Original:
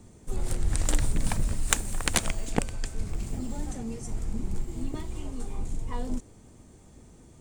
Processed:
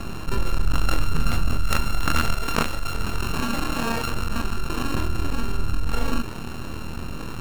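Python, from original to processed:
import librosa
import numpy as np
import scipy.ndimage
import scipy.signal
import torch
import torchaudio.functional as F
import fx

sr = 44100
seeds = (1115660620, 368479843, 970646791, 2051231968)

y = np.r_[np.sort(x[:len(x) // 32 * 32].reshape(-1, 32), axis=1).ravel(), x[len(x) // 32 * 32:]]
y = np.maximum(y, 0.0)
y = fx.high_shelf(y, sr, hz=7800.0, db=-6.0)
y = fx.room_early_taps(y, sr, ms=(25, 38), db=(-4.5, -8.5))
y = fx.fold_sine(y, sr, drive_db=8, ceiling_db=-4.0)
y = fx.low_shelf(y, sr, hz=230.0, db=-8.5, at=(2.34, 4.95))
y = fx.env_flatten(y, sr, amount_pct=50)
y = y * 10.0 ** (-6.0 / 20.0)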